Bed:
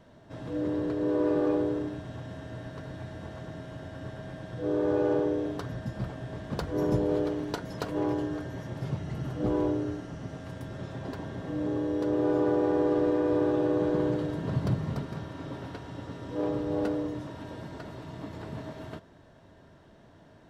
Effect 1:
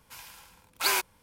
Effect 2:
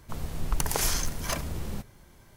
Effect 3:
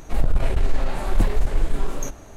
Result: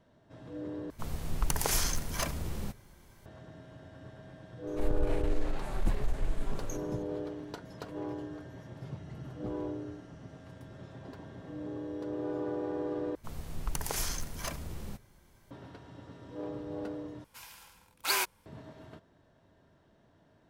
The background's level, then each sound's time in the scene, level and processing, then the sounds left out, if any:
bed −9.5 dB
0:00.90: overwrite with 2 −2.5 dB
0:04.67: mix in 3 −11 dB
0:13.15: overwrite with 2 −7 dB
0:17.24: overwrite with 1 −3.5 dB

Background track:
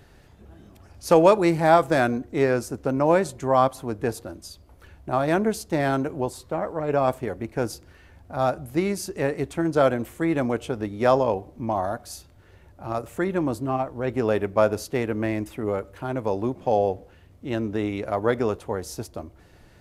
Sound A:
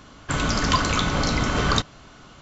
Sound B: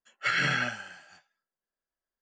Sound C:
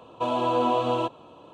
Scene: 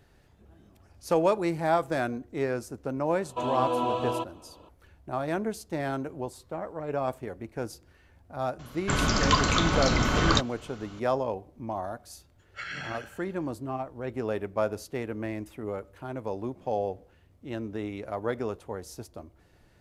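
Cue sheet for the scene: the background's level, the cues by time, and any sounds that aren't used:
background track −8 dB
0:03.16: mix in C −4.5 dB
0:08.59: mix in A −2 dB
0:12.33: mix in B −11 dB

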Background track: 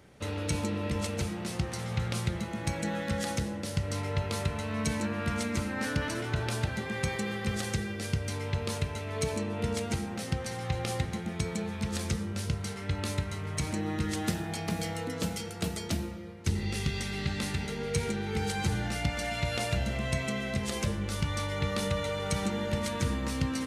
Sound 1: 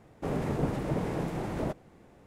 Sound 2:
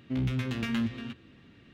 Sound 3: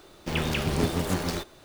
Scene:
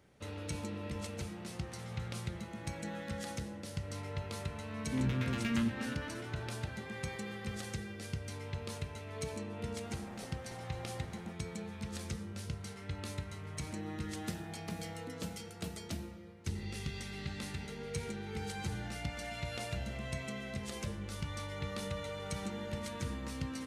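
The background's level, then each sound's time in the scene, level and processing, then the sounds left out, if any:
background track −9 dB
0:04.82: mix in 2 −4 dB
0:09.60: mix in 1 −15.5 dB + gate on every frequency bin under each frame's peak −10 dB weak
not used: 3

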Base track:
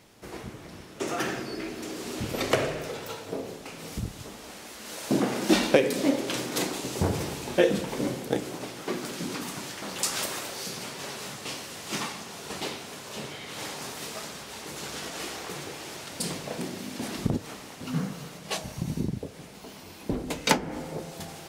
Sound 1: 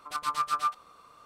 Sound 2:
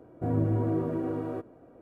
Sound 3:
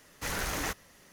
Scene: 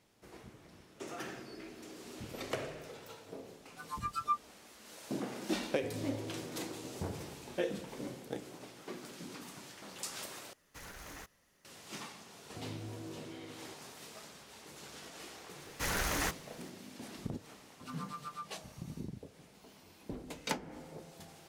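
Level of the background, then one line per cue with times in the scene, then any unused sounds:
base track −13.5 dB
0:03.65: mix in 1 −1.5 dB + noise reduction from a noise print of the clip's start 20 dB
0:05.60: mix in 2 −17 dB
0:10.53: overwrite with 3 −13 dB + brickwall limiter −25.5 dBFS
0:12.33: mix in 2 −18 dB
0:15.58: mix in 3 −0.5 dB
0:17.74: mix in 1 −16.5 dB

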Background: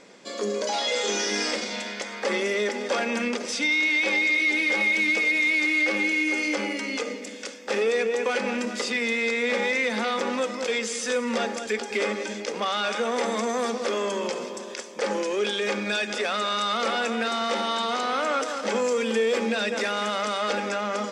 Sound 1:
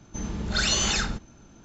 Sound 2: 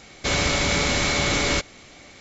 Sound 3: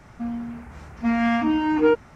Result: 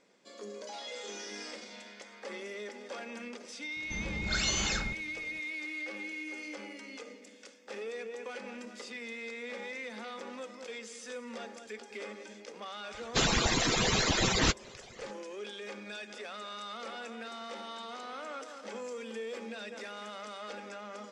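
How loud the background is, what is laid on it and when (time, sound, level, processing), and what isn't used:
background −16.5 dB
0:03.76: mix in 1 −7 dB
0:12.91: mix in 2 −0.5 dB + harmonic-percussive split with one part muted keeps percussive
not used: 3

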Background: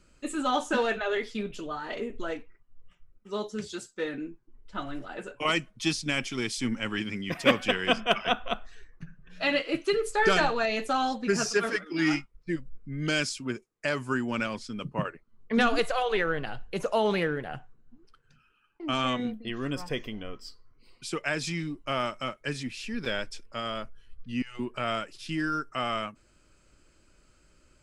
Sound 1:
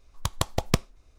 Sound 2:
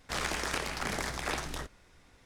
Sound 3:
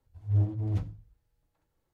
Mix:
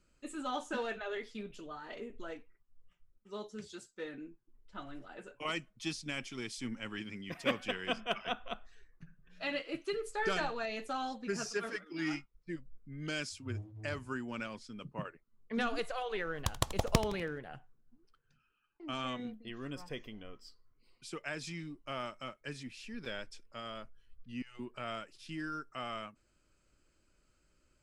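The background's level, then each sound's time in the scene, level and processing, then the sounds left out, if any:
background −10.5 dB
0:13.17: mix in 3 −16.5 dB
0:16.21: mix in 1 −5.5 dB + echo with shifted repeats 82 ms, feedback 46%, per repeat −86 Hz, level −14 dB
not used: 2

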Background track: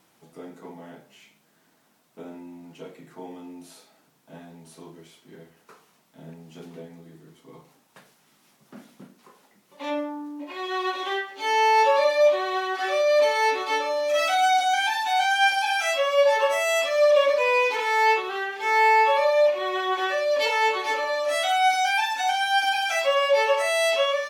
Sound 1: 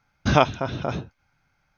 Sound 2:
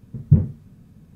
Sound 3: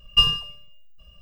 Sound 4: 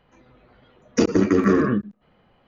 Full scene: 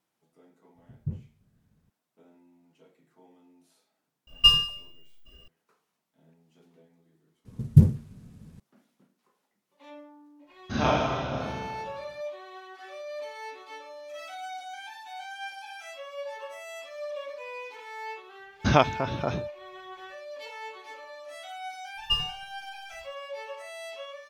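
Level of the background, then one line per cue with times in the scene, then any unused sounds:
background track −18.5 dB
0:00.75: mix in 2 −17 dB + parametric band 220 Hz −3 dB 1.6 octaves
0:04.27: mix in 3 −4.5 dB + high-shelf EQ 2,400 Hz +7 dB
0:07.45: mix in 2 −0.5 dB + variable-slope delta modulation 64 kbit/s
0:10.44: mix in 1 −13.5 dB + four-comb reverb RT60 1.6 s, combs from 27 ms, DRR −8.5 dB
0:18.39: mix in 1 −2.5 dB
0:21.93: mix in 3 −9.5 dB, fades 0.10 s
not used: 4

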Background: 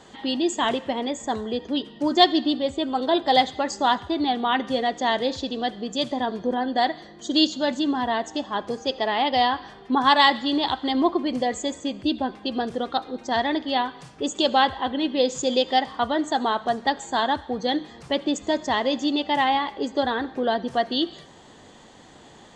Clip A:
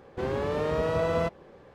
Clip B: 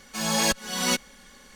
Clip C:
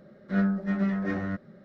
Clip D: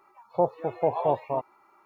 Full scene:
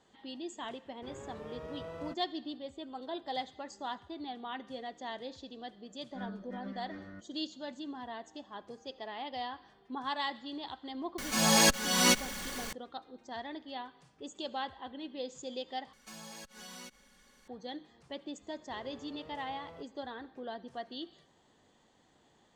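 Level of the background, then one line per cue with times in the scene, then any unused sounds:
background −18.5 dB
0:00.85: mix in A −17.5 dB + notch filter 4,200 Hz
0:05.84: mix in C −17.5 dB + comb filter 3.4 ms, depth 63%
0:11.18: mix in B −1 dB + converter with a step at zero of −35.5 dBFS
0:15.93: overwrite with B −12.5 dB + downward compressor 8 to 1, threshold −32 dBFS
0:18.54: mix in A −18 dB + downward compressor 2 to 1, threshold −36 dBFS
not used: D

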